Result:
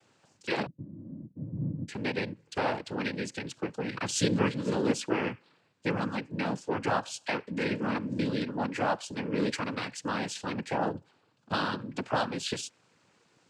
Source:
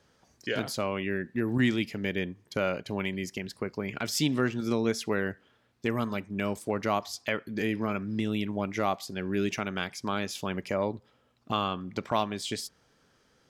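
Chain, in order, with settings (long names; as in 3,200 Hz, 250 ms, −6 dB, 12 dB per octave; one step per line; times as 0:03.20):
0:00.66–0:01.88: inverse Chebyshev low-pass filter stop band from 790 Hz, stop band 70 dB
cochlear-implant simulation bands 8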